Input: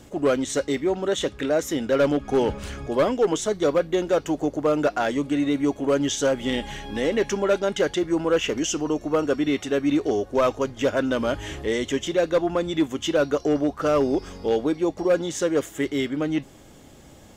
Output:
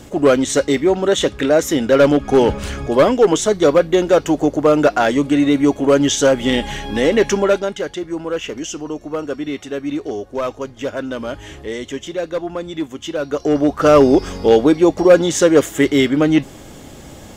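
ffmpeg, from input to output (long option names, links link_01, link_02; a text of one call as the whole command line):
ffmpeg -i in.wav -af "volume=21dB,afade=type=out:start_time=7.37:duration=0.4:silence=0.316228,afade=type=in:start_time=13.23:duration=0.7:silence=0.237137" out.wav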